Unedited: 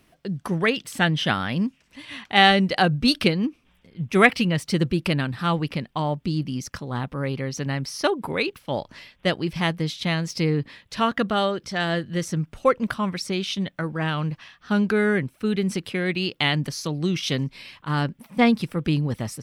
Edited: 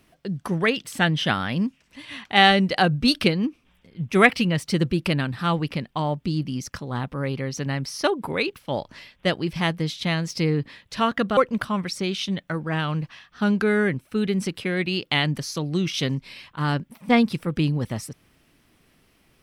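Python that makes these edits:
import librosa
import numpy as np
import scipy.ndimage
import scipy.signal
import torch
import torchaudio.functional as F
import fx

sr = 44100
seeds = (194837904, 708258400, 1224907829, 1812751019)

y = fx.edit(x, sr, fx.cut(start_s=11.37, length_s=1.29), tone=tone)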